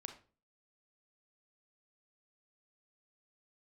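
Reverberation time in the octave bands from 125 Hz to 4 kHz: 0.45, 0.50, 0.40, 0.35, 0.30, 0.30 seconds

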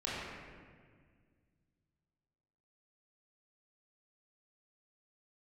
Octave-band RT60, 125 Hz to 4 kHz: 3.0, 2.6, 2.0, 1.6, 1.7, 1.2 seconds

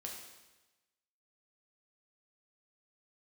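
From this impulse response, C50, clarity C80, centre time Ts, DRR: 3.5 dB, 5.5 dB, 48 ms, −1.5 dB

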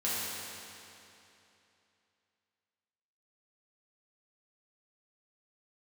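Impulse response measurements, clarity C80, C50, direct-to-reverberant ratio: −2.0 dB, −4.0 dB, −9.5 dB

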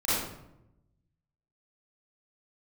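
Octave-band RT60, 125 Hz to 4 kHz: 1.5, 1.2, 0.95, 0.80, 0.65, 0.50 seconds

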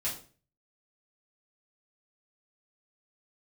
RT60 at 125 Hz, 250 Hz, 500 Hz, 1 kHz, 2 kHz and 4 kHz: 0.60, 0.45, 0.45, 0.35, 0.35, 0.35 seconds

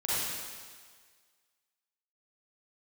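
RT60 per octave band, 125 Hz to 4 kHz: 1.5, 1.5, 1.6, 1.7, 1.7, 1.7 seconds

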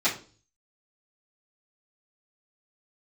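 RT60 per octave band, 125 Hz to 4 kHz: 0.70, 0.50, 0.45, 0.35, 0.30, 0.35 seconds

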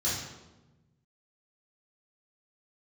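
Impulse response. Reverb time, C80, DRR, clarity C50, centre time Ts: 1.1 s, 4.5 dB, −10.5 dB, 1.0 dB, 65 ms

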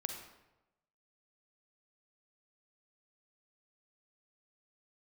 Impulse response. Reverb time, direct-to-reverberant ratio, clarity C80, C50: 1.0 s, 4.5 dB, 7.5 dB, 5.0 dB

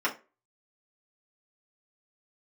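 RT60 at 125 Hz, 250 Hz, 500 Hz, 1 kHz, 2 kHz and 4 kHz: 0.30, 0.30, 0.35, 0.30, 0.30, 0.20 seconds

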